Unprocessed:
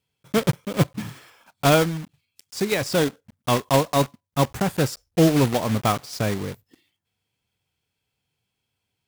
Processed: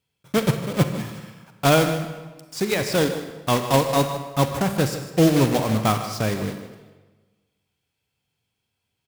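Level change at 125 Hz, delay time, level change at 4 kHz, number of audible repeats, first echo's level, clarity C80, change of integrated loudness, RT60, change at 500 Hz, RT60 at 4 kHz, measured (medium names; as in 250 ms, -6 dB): +1.0 dB, 153 ms, +1.0 dB, 1, -13.0 dB, 8.5 dB, +0.5 dB, 1.3 s, +0.5 dB, 1.0 s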